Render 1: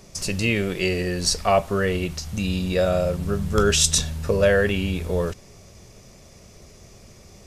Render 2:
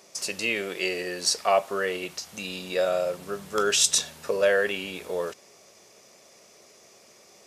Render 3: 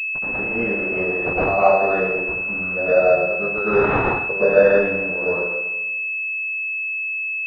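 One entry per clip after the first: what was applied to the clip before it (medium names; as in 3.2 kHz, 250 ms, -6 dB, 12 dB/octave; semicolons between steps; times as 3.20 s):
high-pass 420 Hz 12 dB/octave; trim -2 dB
crossover distortion -36.5 dBFS; plate-style reverb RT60 1.1 s, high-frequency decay 0.6×, pre-delay 95 ms, DRR -9.5 dB; class-D stage that switches slowly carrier 2.6 kHz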